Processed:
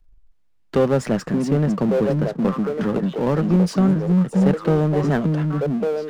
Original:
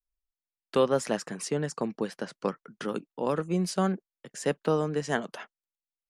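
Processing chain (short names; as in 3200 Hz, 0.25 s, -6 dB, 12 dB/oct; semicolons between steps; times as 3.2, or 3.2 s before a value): RIAA curve playback; delay with a stepping band-pass 0.575 s, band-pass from 210 Hz, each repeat 1.4 oct, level 0 dB; power-law curve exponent 0.7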